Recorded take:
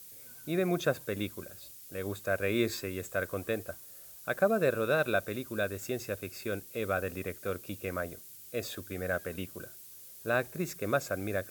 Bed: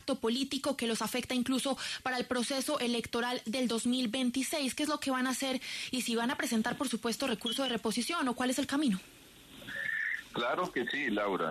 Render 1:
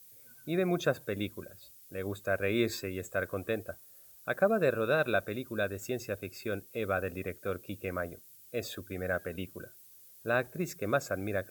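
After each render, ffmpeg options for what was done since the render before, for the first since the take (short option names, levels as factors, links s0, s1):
-af "afftdn=nr=8:nf=-50"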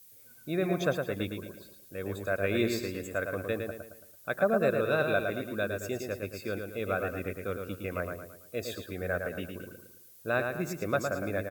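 -filter_complex "[0:a]asplit=2[s0][s1];[s1]adelay=111,lowpass=f=4500:p=1,volume=0.562,asplit=2[s2][s3];[s3]adelay=111,lowpass=f=4500:p=1,volume=0.43,asplit=2[s4][s5];[s5]adelay=111,lowpass=f=4500:p=1,volume=0.43,asplit=2[s6][s7];[s7]adelay=111,lowpass=f=4500:p=1,volume=0.43,asplit=2[s8][s9];[s9]adelay=111,lowpass=f=4500:p=1,volume=0.43[s10];[s0][s2][s4][s6][s8][s10]amix=inputs=6:normalize=0"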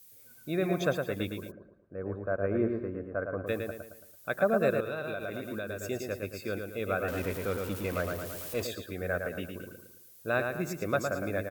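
-filter_complex "[0:a]asplit=3[s0][s1][s2];[s0]afade=t=out:st=1.5:d=0.02[s3];[s1]lowpass=f=1400:w=0.5412,lowpass=f=1400:w=1.3066,afade=t=in:st=1.5:d=0.02,afade=t=out:st=3.46:d=0.02[s4];[s2]afade=t=in:st=3.46:d=0.02[s5];[s3][s4][s5]amix=inputs=3:normalize=0,asettb=1/sr,asplit=3[s6][s7][s8];[s6]atrim=end=4.804[s9];[s7]atrim=start=4.8:end=5.87,asetpts=PTS-STARTPTS,afade=t=in:d=0.004:c=qsin,afade=t=out:st=1.066:d=0.004:c=qsin,acompressor=threshold=0.0282:ratio=10:attack=3.2:release=140:knee=1:detection=peak[s10];[s8]atrim=start=5.866[s11];[s9][s10]acrossfade=d=0.004:c1=hsin:c2=qsin[s12];[s12][s11]acrossfade=d=0.004:c1=qsin:c2=hsin,asettb=1/sr,asplit=3[s13][s14][s15];[s13]atrim=end=7.084[s16];[s14]atrim=start=7.08:end=8.67,asetpts=PTS-STARTPTS,afade=t=in:d=0.004:c=qsin,afade=t=out:st=1.586:d=0.004:c=qsin,aeval=exprs='val(0)+0.5*0.0158*sgn(val(0))':c=same[s17];[s15]atrim=start=8.666[s18];[s16][s17]acrossfade=d=0.004:c1=hsin:c2=qsin[s19];[s19][s18]acrossfade=d=0.004:c1=qsin:c2=hsin"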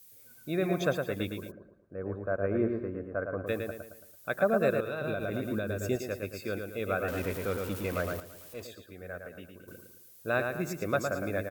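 -filter_complex "[0:a]asettb=1/sr,asplit=3[s0][s1][s2];[s0]atrim=end=5.014[s3];[s1]atrim=start=5.01:end=5.96,asetpts=PTS-STARTPTS,afade=t=in:d=0.004:c=qsin,afade=t=out:st=0.946:d=0.004:c=qsin,lowshelf=f=370:g=8.5[s4];[s2]atrim=start=5.956[s5];[s3][s4]acrossfade=d=0.004:c1=hsin:c2=qsin[s6];[s6][s5]acrossfade=d=0.004:c1=qsin:c2=hsin,asplit=3[s7][s8][s9];[s7]atrim=end=8.202[s10];[s8]atrim=start=8.198:end=9.682,asetpts=PTS-STARTPTS,volume=0.335[s11];[s9]atrim=start=9.678[s12];[s10][s11]acrossfade=d=0.004:c1=hsin:c2=hsin[s13];[s13][s12]acrossfade=d=0.004:c1=hsin:c2=hsin"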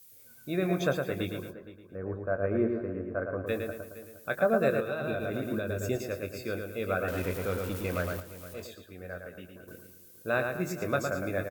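-filter_complex "[0:a]asplit=2[s0][s1];[s1]adelay=22,volume=0.335[s2];[s0][s2]amix=inputs=2:normalize=0,asplit=2[s3][s4];[s4]adelay=466.5,volume=0.158,highshelf=f=4000:g=-10.5[s5];[s3][s5]amix=inputs=2:normalize=0"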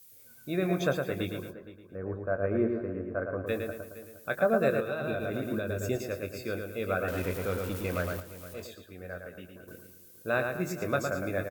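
-af anull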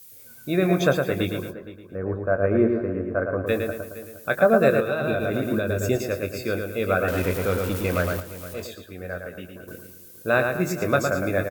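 -af "volume=2.51"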